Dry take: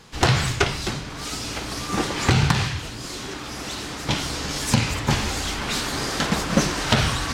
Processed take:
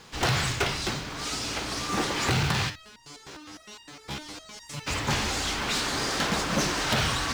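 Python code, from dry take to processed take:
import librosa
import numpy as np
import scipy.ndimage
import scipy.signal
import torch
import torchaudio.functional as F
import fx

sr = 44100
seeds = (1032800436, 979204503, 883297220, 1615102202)

y = scipy.signal.sosfilt(scipy.signal.butter(2, 9400.0, 'lowpass', fs=sr, output='sos'), x)
y = fx.low_shelf(y, sr, hz=260.0, db=-5.5)
y = 10.0 ** (-19.5 / 20.0) * np.tanh(y / 10.0 ** (-19.5 / 20.0))
y = fx.quant_companded(y, sr, bits=6)
y = fx.resonator_held(y, sr, hz=9.8, low_hz=69.0, high_hz=930.0, at=(2.69, 4.86), fade=0.02)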